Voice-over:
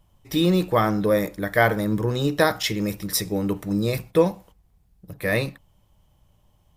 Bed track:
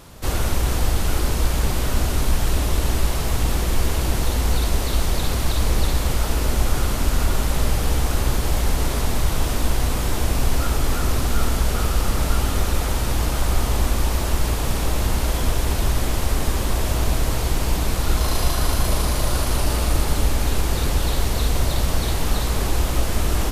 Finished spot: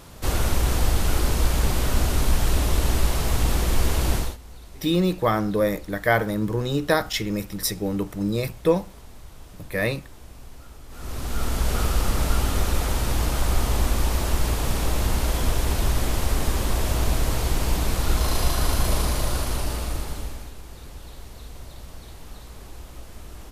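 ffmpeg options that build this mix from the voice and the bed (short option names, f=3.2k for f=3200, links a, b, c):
-filter_complex "[0:a]adelay=4500,volume=-1.5dB[a];[1:a]volume=20.5dB,afade=t=out:st=4.14:d=0.23:silence=0.0749894,afade=t=in:st=10.89:d=0.86:silence=0.0841395,afade=t=out:st=18.98:d=1.55:silence=0.125893[b];[a][b]amix=inputs=2:normalize=0"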